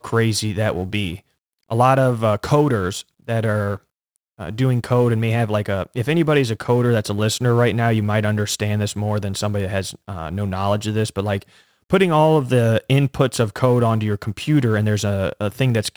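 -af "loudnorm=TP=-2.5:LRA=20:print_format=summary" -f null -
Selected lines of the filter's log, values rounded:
Input Integrated:    -19.6 LUFS
Input True Peak:      -2.1 dBTP
Input LRA:             3.5 LU
Input Threshold:     -29.9 LUFS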